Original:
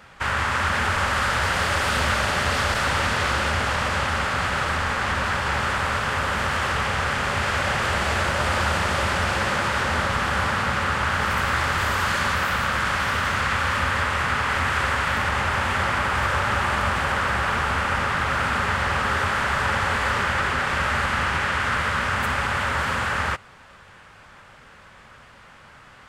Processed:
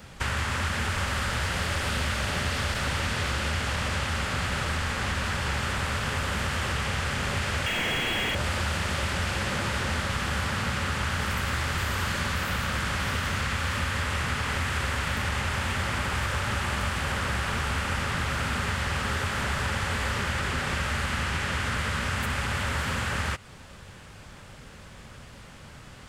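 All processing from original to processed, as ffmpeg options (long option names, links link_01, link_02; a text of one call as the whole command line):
ffmpeg -i in.wav -filter_complex "[0:a]asettb=1/sr,asplit=3[link_01][link_02][link_03];[link_01]atrim=end=7.664[link_04];[link_02]atrim=start=7.66:end=8.35,asetpts=PTS-STARTPTS,afade=type=in:duration=0.004:curve=qsin,afade=type=out:start_time=0.686:duration=0.004:curve=qsin,lowpass=frequency=2900:width_type=q:width=0.5098,lowpass=frequency=2900:width_type=q:width=0.6013,lowpass=frequency=2900:width_type=q:width=0.9,lowpass=frequency=2900:width_type=q:width=2.563,afreqshift=-3400,asplit=2[link_05][link_06];[link_06]highpass=frequency=720:poles=1,volume=27dB,asoftclip=type=tanh:threshold=-11.5dB[link_07];[link_05][link_07]amix=inputs=2:normalize=0,lowpass=frequency=1900:poles=1,volume=-6dB[link_08];[link_03]atrim=start=8.346[link_09];[link_04][link_08]acrossfade=duration=0.004:curve1=hsin:curve2=qsin[link_10];[link_10][link_09]acrossfade=duration=0.004:curve1=qsin:curve2=hsin,equalizer=frequency=1300:width_type=o:width=2.7:gain=-13,acrossover=split=1100|3200[link_11][link_12][link_13];[link_11]acompressor=threshold=-38dB:ratio=4[link_14];[link_12]acompressor=threshold=-39dB:ratio=4[link_15];[link_13]acompressor=threshold=-49dB:ratio=4[link_16];[link_14][link_15][link_16]amix=inputs=3:normalize=0,volume=8.5dB" out.wav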